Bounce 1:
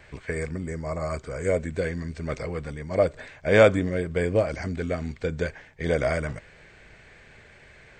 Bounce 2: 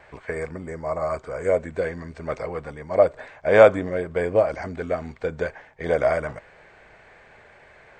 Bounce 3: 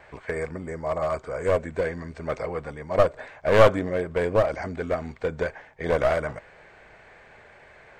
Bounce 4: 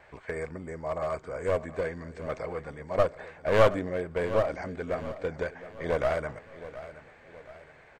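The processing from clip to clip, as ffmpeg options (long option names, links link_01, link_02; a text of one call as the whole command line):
ffmpeg -i in.wav -af "equalizer=frequency=830:width_type=o:width=2.2:gain=14,volume=-6.5dB" out.wav
ffmpeg -i in.wav -af "aeval=exprs='clip(val(0),-1,0.0891)':channel_layout=same" out.wav
ffmpeg -i in.wav -af "aecho=1:1:720|1440|2160|2880:0.178|0.0818|0.0376|0.0173,volume=-5dB" out.wav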